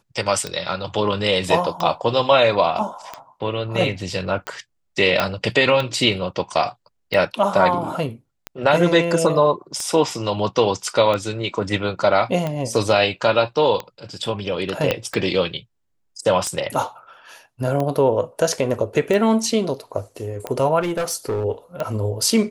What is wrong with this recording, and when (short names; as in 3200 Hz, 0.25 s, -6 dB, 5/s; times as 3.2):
tick 45 rpm -12 dBFS
5.2 pop -5 dBFS
14.91 pop -5 dBFS
20.8–21.45 clipped -19 dBFS